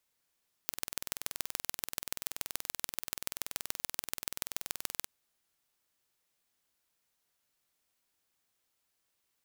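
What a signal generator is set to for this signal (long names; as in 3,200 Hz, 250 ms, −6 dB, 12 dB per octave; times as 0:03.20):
impulse train 20.9 per second, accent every 3, −4.5 dBFS 4.38 s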